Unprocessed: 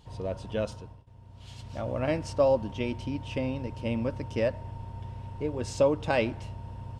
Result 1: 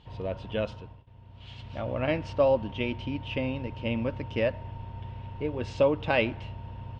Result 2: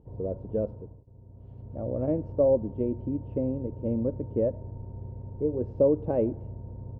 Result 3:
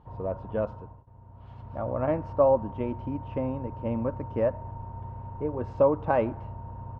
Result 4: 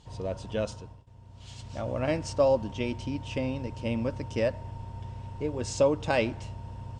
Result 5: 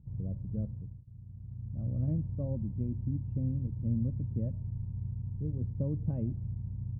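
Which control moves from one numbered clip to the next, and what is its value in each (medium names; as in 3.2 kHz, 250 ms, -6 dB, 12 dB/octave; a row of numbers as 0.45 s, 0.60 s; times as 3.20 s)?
resonant low-pass, frequency: 3 kHz, 440 Hz, 1.1 kHz, 7.6 kHz, 160 Hz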